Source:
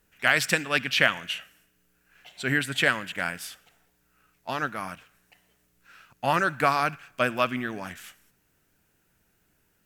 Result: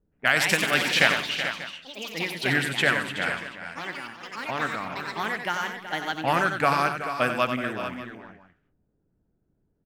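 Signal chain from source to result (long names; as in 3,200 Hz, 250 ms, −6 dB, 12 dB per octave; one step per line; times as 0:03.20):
low-pass that shuts in the quiet parts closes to 430 Hz, open at −23 dBFS
delay with pitch and tempo change per echo 210 ms, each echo +4 semitones, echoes 3, each echo −6 dB
on a send: multi-tap delay 91/376/436/589 ms −8/−12/−10.5/−18 dB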